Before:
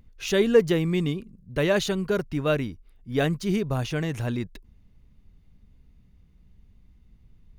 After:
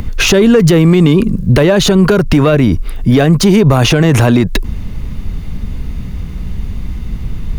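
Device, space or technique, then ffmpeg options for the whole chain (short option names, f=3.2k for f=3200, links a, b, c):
mastering chain: -filter_complex "[0:a]equalizer=f=1.2k:t=o:w=0.77:g=2.5,acrossover=split=210|1300[a][b][c];[a]acompressor=threshold=-36dB:ratio=4[d];[b]acompressor=threshold=-30dB:ratio=4[e];[c]acompressor=threshold=-44dB:ratio=4[f];[d][e][f]amix=inputs=3:normalize=0,acompressor=threshold=-34dB:ratio=3,asoftclip=type=tanh:threshold=-27.5dB,alimiter=level_in=36dB:limit=-1dB:release=50:level=0:latency=1,volume=-1dB"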